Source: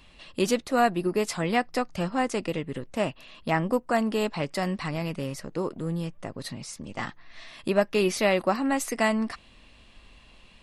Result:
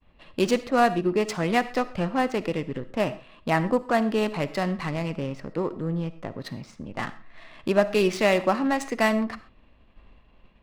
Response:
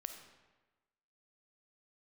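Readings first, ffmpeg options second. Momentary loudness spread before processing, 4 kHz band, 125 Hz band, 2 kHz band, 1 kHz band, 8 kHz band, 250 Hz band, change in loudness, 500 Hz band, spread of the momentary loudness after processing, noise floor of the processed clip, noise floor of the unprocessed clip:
14 LU, +0.5 dB, +2.0 dB, +2.0 dB, +2.0 dB, -4.0 dB, +2.0 dB, +2.0 dB, +2.0 dB, 14 LU, -56 dBFS, -54 dBFS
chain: -filter_complex "[0:a]agate=range=-33dB:threshold=-48dB:ratio=3:detection=peak,adynamicsmooth=sensitivity=6.5:basefreq=1.7k,asplit=2[a][b];[1:a]atrim=start_sample=2205,atrim=end_sample=6174[c];[b][c]afir=irnorm=-1:irlink=0,volume=3dB[d];[a][d]amix=inputs=2:normalize=0,volume=-3.5dB"

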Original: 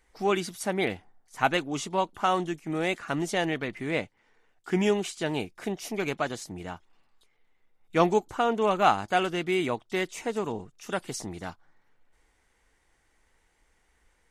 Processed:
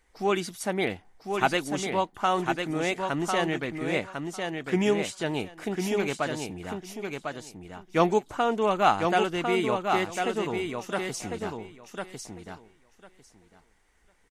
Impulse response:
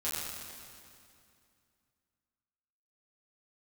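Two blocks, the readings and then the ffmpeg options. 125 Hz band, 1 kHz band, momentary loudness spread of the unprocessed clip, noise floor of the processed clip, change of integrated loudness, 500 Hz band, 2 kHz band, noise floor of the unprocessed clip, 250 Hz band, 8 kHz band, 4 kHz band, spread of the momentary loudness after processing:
+1.0 dB, +1.0 dB, 13 LU, -64 dBFS, +0.5 dB, +1.5 dB, +1.0 dB, -69 dBFS, +1.0 dB, +1.0 dB, +1.0 dB, 14 LU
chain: -af "aecho=1:1:1050|2100|3150:0.562|0.0844|0.0127"

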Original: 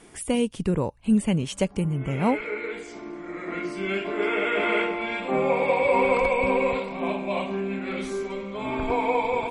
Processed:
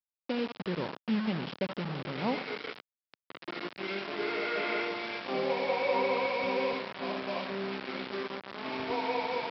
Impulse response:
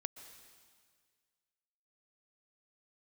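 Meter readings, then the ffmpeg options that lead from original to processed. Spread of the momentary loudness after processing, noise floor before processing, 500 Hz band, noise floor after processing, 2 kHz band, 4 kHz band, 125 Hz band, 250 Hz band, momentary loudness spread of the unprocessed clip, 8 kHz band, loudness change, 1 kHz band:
10 LU, -46 dBFS, -8.0 dB, under -85 dBFS, -7.0 dB, -1.0 dB, -11.5 dB, -9.5 dB, 10 LU, n/a, -8.0 dB, -7.5 dB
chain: -filter_complex "[1:a]atrim=start_sample=2205,asetrate=83790,aresample=44100[a];[0:a][a]afir=irnorm=-1:irlink=0,aresample=11025,acrusher=bits=5:mix=0:aa=0.000001,aresample=44100,highpass=170,lowpass=4k"

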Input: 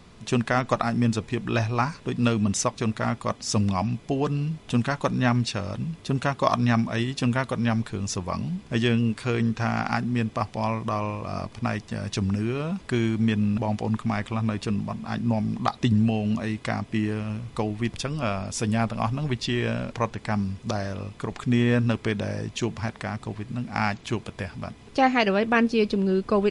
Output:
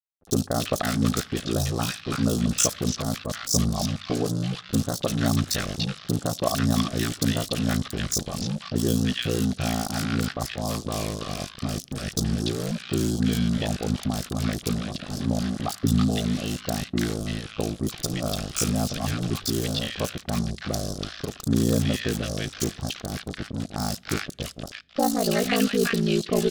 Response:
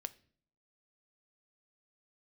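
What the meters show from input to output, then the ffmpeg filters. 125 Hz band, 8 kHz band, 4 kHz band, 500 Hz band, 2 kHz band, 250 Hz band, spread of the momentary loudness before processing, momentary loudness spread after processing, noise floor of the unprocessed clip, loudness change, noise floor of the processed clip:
-1.0 dB, +8.0 dB, +5.0 dB, -1.0 dB, -3.5 dB, -0.5 dB, 9 LU, 8 LU, -48 dBFS, -0.5 dB, -46 dBFS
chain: -filter_complex "[0:a]acrusher=bits=4:mix=0:aa=0.5,highshelf=f=4.5k:g=-12,aeval=exprs='val(0)*sin(2*PI*28*n/s)':c=same,acrossover=split=1200|4300[a][b][c];[c]adelay=40[d];[b]adelay=330[e];[a][e][d]amix=inputs=3:normalize=0,asplit=2[f][g];[1:a]atrim=start_sample=2205,asetrate=31752,aresample=44100[h];[g][h]afir=irnorm=-1:irlink=0,volume=-8dB[i];[f][i]amix=inputs=2:normalize=0,aexciter=amount=2.8:drive=9.7:freq=3.3k,equalizer=f=940:w=6.6:g=-13"

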